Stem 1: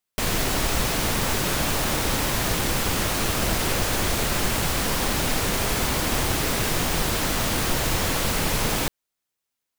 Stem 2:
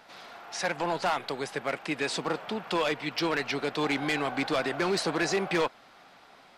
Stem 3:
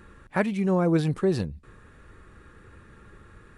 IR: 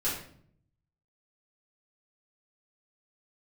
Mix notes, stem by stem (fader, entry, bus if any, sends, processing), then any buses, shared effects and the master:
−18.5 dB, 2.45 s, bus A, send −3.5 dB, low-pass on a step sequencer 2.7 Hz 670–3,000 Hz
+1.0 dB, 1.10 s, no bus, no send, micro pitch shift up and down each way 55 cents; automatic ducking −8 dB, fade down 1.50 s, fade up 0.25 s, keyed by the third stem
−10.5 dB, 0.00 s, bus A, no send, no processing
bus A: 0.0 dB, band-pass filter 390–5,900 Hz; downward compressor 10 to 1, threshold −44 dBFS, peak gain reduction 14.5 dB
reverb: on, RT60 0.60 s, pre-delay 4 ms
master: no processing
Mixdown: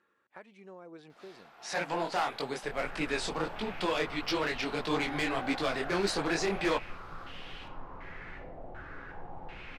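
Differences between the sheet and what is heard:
stem 1 −18.5 dB → −30.0 dB
stem 3 −10.5 dB → −18.5 dB

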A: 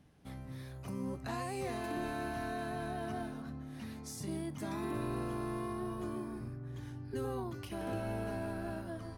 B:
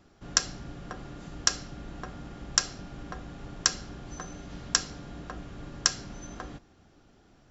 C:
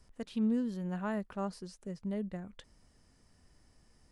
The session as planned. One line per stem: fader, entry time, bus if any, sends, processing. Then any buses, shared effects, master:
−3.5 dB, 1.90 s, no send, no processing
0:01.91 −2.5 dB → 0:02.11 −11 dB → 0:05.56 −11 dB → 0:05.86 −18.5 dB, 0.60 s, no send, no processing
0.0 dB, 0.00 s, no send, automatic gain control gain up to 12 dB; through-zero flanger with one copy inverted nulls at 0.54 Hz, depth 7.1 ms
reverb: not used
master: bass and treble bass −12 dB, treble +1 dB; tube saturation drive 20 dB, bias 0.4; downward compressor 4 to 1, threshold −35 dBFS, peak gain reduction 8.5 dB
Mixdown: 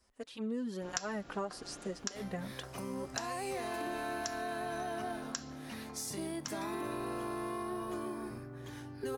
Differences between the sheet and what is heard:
stem A −3.5 dB → +6.0 dB
master: missing tube saturation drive 20 dB, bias 0.4

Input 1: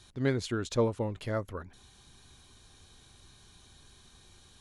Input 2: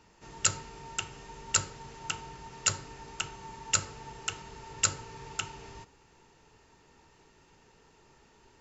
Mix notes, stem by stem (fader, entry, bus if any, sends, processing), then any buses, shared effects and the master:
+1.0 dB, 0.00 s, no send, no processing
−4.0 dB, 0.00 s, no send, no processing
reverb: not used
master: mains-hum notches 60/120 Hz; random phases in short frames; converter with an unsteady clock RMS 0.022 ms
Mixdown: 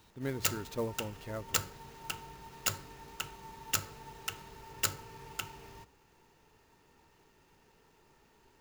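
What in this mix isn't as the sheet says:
stem 1 +1.0 dB → −8.0 dB
master: missing random phases in short frames

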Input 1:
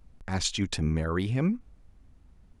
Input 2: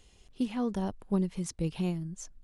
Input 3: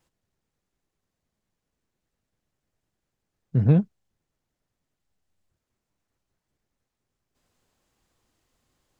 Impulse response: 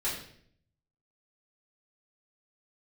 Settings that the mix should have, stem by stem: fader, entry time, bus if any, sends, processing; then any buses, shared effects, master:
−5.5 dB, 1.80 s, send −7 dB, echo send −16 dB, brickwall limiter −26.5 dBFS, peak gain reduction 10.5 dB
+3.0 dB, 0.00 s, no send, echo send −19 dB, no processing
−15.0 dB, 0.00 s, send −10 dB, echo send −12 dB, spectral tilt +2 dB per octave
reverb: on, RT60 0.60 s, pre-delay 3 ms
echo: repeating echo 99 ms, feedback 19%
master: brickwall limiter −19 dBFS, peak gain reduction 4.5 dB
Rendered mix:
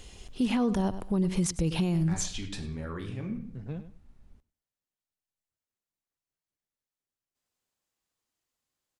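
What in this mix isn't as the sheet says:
stem 2 +3.0 dB → +11.5 dB
stem 3: send off

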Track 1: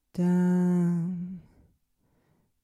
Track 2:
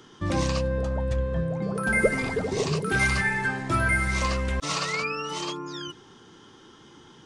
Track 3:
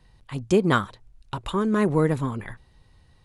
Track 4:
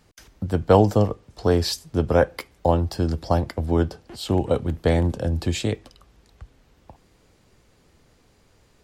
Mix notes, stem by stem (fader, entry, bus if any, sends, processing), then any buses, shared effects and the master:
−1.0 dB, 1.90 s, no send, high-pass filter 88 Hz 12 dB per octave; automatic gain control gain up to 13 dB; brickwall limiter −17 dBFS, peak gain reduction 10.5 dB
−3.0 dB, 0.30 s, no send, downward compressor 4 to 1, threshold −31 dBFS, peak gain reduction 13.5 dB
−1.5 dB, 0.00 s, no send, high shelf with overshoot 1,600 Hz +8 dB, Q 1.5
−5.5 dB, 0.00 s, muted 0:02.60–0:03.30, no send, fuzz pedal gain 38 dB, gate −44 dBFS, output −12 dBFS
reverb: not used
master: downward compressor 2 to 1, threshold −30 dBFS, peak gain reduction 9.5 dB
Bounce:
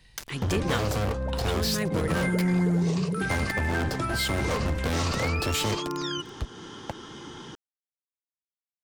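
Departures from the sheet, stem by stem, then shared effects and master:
stem 1: missing brickwall limiter −17 dBFS, peak gain reduction 10.5 dB
stem 2 −3.0 dB → +9.0 dB

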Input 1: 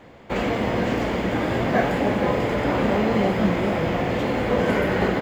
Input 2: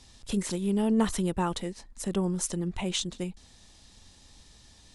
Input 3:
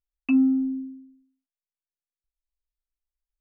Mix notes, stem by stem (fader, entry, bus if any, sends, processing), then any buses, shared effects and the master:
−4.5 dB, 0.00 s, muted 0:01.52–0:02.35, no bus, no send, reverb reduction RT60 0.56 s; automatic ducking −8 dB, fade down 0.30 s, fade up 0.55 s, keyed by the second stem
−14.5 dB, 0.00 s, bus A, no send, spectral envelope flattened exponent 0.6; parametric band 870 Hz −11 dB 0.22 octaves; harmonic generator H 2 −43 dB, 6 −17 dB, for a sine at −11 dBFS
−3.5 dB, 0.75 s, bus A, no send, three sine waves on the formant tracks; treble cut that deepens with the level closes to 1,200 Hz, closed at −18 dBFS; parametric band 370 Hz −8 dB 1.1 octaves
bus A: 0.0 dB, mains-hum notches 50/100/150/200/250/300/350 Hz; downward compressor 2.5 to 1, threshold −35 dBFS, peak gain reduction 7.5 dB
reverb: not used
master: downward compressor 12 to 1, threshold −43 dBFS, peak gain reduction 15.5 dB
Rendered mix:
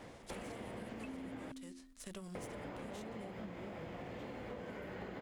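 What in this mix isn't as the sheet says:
stem 1: missing reverb reduction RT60 0.56 s
stem 3: missing three sine waves on the formant tracks

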